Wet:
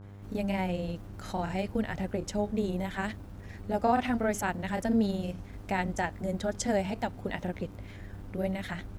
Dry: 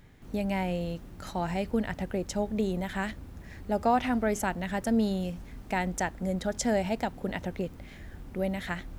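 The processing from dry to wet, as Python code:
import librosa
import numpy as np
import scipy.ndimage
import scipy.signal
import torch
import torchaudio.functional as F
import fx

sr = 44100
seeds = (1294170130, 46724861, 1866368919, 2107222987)

y = fx.granulator(x, sr, seeds[0], grain_ms=100.0, per_s=20.0, spray_ms=22.0, spread_st=0)
y = fx.dmg_buzz(y, sr, base_hz=100.0, harmonics=16, level_db=-47.0, tilt_db=-8, odd_only=False)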